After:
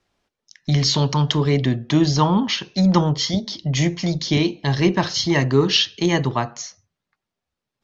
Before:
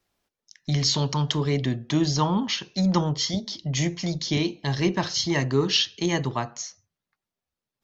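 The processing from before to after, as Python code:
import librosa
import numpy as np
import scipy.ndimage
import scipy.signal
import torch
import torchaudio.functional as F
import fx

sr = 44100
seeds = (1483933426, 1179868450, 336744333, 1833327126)

y = fx.air_absorb(x, sr, metres=64.0)
y = F.gain(torch.from_numpy(y), 6.0).numpy()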